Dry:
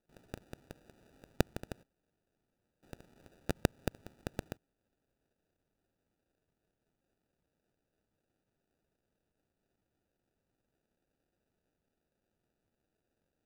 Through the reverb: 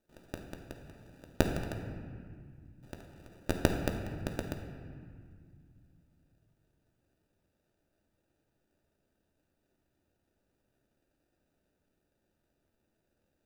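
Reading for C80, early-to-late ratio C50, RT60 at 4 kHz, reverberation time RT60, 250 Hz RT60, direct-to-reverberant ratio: 6.5 dB, 5.5 dB, 1.3 s, 2.0 s, 3.4 s, 2.0 dB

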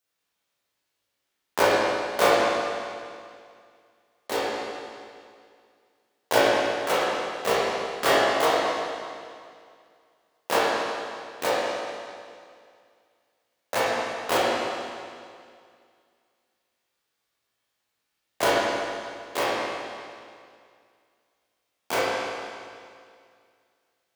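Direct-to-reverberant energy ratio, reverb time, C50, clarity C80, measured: −8.5 dB, 2.2 s, −3.5 dB, −0.5 dB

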